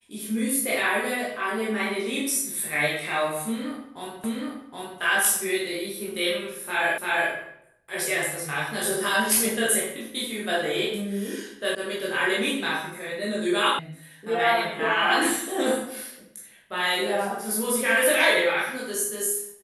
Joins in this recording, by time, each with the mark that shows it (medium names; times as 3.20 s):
4.24 s: repeat of the last 0.77 s
6.98 s: repeat of the last 0.34 s
11.75 s: sound stops dead
13.79 s: sound stops dead